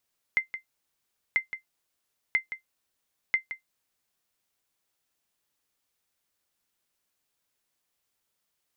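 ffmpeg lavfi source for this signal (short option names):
-f lavfi -i "aevalsrc='0.188*(sin(2*PI*2080*mod(t,0.99))*exp(-6.91*mod(t,0.99)/0.12)+0.266*sin(2*PI*2080*max(mod(t,0.99)-0.17,0))*exp(-6.91*max(mod(t,0.99)-0.17,0)/0.12))':d=3.96:s=44100"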